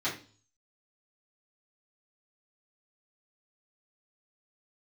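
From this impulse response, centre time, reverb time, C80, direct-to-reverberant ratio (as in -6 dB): 24 ms, 0.40 s, 14.0 dB, -10.5 dB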